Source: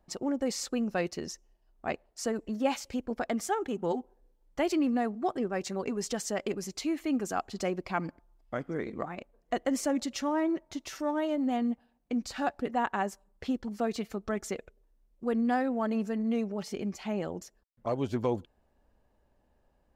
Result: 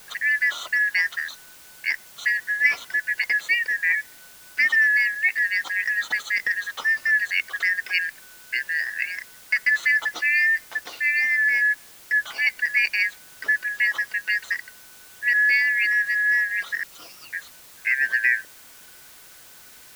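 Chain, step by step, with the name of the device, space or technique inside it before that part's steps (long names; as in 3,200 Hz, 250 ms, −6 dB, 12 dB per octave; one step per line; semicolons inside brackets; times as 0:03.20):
0:16.83–0:17.33: Butterworth high-pass 1,300 Hz
split-band scrambled radio (band-splitting scrambler in four parts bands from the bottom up 3142; band-pass filter 390–3,300 Hz; white noise bed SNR 23 dB)
level +9 dB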